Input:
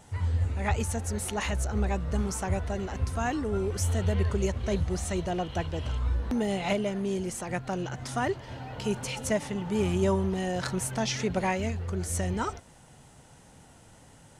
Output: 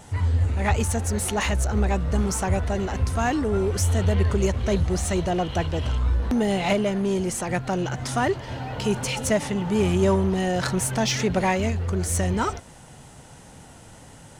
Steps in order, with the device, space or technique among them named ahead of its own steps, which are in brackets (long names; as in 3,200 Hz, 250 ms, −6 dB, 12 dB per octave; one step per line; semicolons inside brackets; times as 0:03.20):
parallel distortion (in parallel at −5 dB: hard clipping −32.5 dBFS, distortion −6 dB)
on the sum: level +4 dB